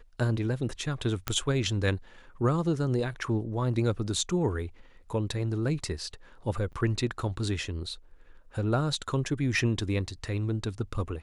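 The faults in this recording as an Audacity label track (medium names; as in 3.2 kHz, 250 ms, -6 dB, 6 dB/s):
1.280000	1.280000	pop -11 dBFS
6.720000	6.730000	dropout 8.9 ms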